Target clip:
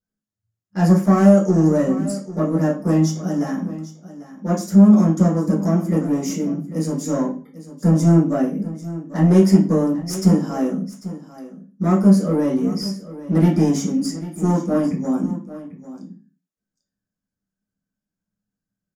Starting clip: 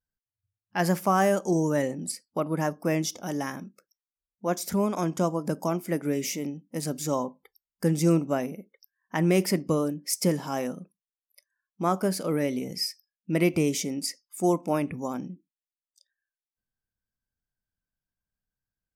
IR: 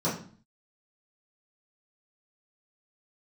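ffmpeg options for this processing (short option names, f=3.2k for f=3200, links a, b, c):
-filter_complex "[0:a]equalizer=f=1k:t=o:w=2.4:g=-5,aeval=exprs='clip(val(0),-1,0.0473)':c=same,aecho=1:1:795:0.168[a];[1:a]atrim=start_sample=2205,asetrate=52920,aresample=44100[b];[a][b]afir=irnorm=-1:irlink=0,volume=-4dB"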